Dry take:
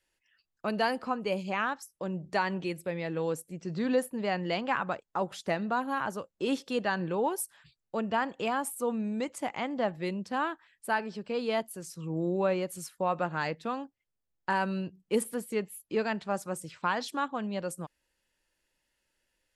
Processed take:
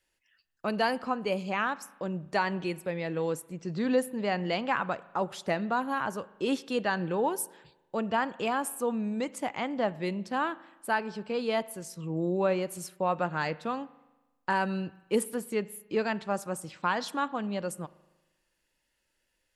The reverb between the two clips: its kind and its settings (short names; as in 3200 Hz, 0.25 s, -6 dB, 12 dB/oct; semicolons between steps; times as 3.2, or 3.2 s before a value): spring tank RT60 1.1 s, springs 39 ms, chirp 25 ms, DRR 18.5 dB; gain +1 dB